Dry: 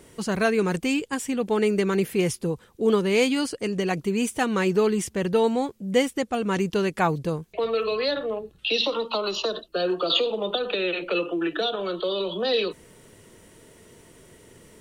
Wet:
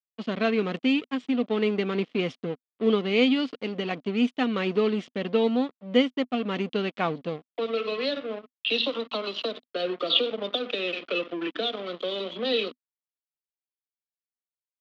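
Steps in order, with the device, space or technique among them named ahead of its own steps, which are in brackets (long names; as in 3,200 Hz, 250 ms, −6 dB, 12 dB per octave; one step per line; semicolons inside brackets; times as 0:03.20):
blown loudspeaker (dead-zone distortion −34.5 dBFS; loudspeaker in its box 220–4,000 Hz, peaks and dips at 250 Hz +9 dB, 360 Hz −4 dB, 890 Hz −8 dB, 1,600 Hz −6 dB, 3,200 Hz +5 dB)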